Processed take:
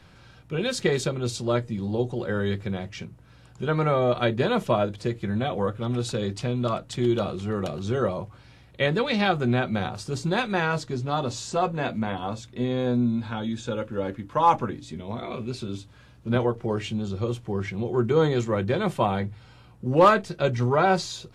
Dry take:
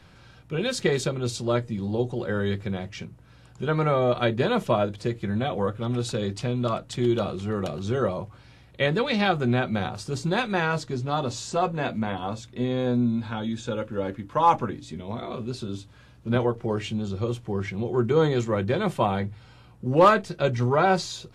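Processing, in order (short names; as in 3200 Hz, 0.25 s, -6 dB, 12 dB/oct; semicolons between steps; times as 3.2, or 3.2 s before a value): 15.24–15.78 bell 2300 Hz +8.5 dB 0.31 oct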